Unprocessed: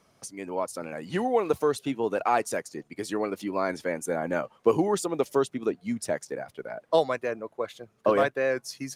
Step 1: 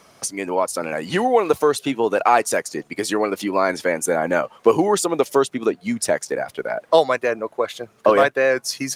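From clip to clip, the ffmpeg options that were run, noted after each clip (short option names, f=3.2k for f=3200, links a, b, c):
-filter_complex "[0:a]asplit=2[a][b];[b]acompressor=threshold=-34dB:ratio=6,volume=2dB[c];[a][c]amix=inputs=2:normalize=0,lowshelf=f=300:g=-8,volume=7.5dB"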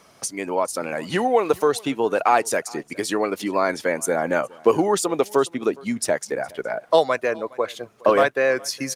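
-af "aecho=1:1:414:0.0631,volume=-2dB"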